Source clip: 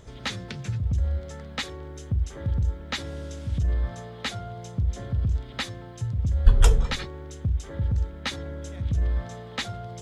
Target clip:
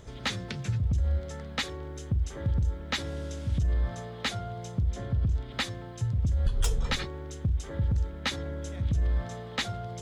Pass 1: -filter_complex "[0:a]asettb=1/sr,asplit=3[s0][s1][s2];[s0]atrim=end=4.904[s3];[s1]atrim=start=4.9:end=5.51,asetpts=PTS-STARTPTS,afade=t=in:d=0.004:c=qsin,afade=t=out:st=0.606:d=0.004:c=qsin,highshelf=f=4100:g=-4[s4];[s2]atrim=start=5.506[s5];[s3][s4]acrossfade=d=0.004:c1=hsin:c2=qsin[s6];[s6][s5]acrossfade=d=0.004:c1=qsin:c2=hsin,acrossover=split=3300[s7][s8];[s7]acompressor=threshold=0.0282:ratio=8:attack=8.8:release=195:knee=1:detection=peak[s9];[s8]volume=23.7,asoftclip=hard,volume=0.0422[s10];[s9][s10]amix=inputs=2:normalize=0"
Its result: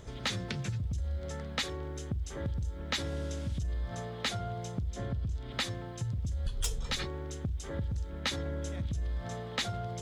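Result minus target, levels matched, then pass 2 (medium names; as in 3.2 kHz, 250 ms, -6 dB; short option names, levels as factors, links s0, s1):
compression: peak gain reduction +8 dB
-filter_complex "[0:a]asettb=1/sr,asplit=3[s0][s1][s2];[s0]atrim=end=4.904[s3];[s1]atrim=start=4.9:end=5.51,asetpts=PTS-STARTPTS,afade=t=in:d=0.004:c=qsin,afade=t=out:st=0.606:d=0.004:c=qsin,highshelf=f=4100:g=-4[s4];[s2]atrim=start=5.506[s5];[s3][s4]acrossfade=d=0.004:c1=hsin:c2=qsin[s6];[s6][s5]acrossfade=d=0.004:c1=qsin:c2=hsin,acrossover=split=3300[s7][s8];[s7]acompressor=threshold=0.0794:ratio=8:attack=8.8:release=195:knee=1:detection=peak[s9];[s8]volume=23.7,asoftclip=hard,volume=0.0422[s10];[s9][s10]amix=inputs=2:normalize=0"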